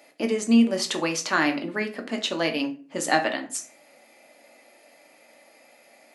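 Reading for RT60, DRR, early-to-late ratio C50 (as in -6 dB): 0.40 s, 3.0 dB, 12.0 dB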